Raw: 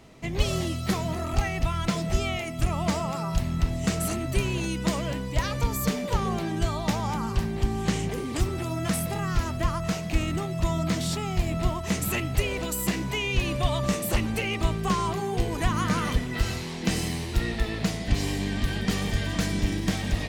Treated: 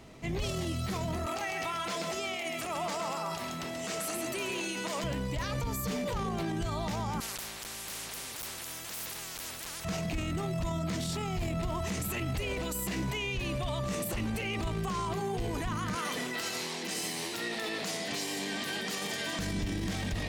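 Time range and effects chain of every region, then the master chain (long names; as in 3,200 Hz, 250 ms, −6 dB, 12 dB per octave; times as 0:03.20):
0:01.26–0:05.04: high-pass filter 390 Hz + single-tap delay 133 ms −7 dB
0:07.20–0:09.85: hard clipping −21 dBFS + every bin compressed towards the loudest bin 10 to 1
0:15.95–0:19.39: high-pass filter 140 Hz 24 dB per octave + bass and treble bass −14 dB, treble +4 dB
whole clip: transient designer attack −5 dB, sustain +5 dB; brickwall limiter −25.5 dBFS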